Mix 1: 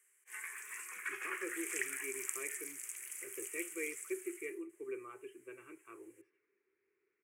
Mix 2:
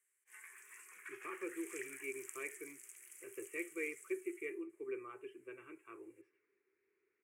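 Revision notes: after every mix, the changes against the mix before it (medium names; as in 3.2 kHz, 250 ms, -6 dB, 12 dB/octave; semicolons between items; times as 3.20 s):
background -10.5 dB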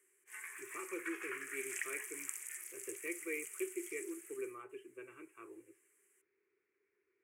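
speech: entry -0.50 s; background +7.5 dB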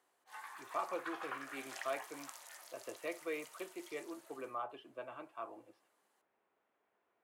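background: add treble shelf 2.4 kHz -11.5 dB; master: remove FFT filter 100 Hz 0 dB, 150 Hz -8 dB, 260 Hz -9 dB, 390 Hz +10 dB, 660 Hz -28 dB, 1.1 kHz -12 dB, 2.3 kHz +6 dB, 4 kHz -26 dB, 8 kHz +3 dB, 14 kHz -4 dB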